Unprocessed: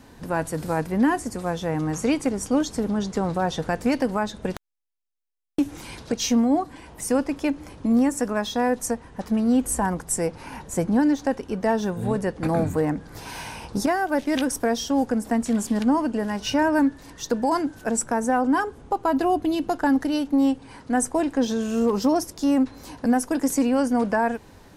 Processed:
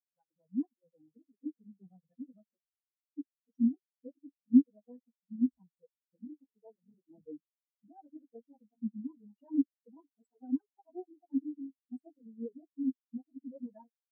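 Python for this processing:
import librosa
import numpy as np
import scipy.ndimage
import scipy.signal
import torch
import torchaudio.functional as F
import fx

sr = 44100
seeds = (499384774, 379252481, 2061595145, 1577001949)

y = fx.echo_banded(x, sr, ms=148, feedback_pct=47, hz=1600.0, wet_db=-15.5)
y = fx.stretch_vocoder_free(y, sr, factor=0.57)
y = fx.spectral_expand(y, sr, expansion=4.0)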